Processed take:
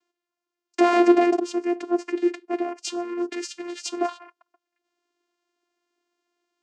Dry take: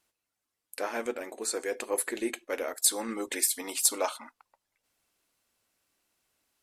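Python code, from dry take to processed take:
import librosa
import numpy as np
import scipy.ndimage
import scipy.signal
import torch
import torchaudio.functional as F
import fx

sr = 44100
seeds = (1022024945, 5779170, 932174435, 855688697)

y = fx.leveller(x, sr, passes=5, at=(0.78, 1.39))
y = fx.vocoder(y, sr, bands=8, carrier='saw', carrier_hz=349.0)
y = y * librosa.db_to_amplitude(6.5)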